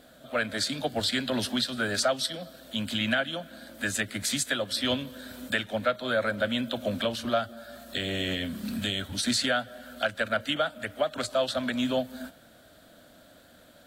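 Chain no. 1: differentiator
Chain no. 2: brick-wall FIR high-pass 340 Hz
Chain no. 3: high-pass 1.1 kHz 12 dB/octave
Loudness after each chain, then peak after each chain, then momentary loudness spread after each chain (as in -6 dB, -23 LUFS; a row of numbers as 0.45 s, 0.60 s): -36.5 LUFS, -30.0 LUFS, -31.5 LUFS; -15.0 dBFS, -13.0 dBFS, -13.5 dBFS; 15 LU, 10 LU, 11 LU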